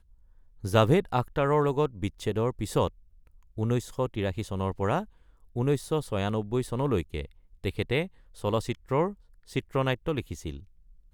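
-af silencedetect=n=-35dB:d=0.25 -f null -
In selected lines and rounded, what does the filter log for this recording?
silence_start: 0.00
silence_end: 0.64 | silence_duration: 0.64
silence_start: 2.88
silence_end: 3.58 | silence_duration: 0.70
silence_start: 5.04
silence_end: 5.56 | silence_duration: 0.52
silence_start: 7.25
silence_end: 7.64 | silence_duration: 0.39
silence_start: 8.06
silence_end: 8.44 | silence_duration: 0.38
silence_start: 9.12
silence_end: 9.56 | silence_duration: 0.44
silence_start: 10.59
silence_end: 11.14 | silence_duration: 0.54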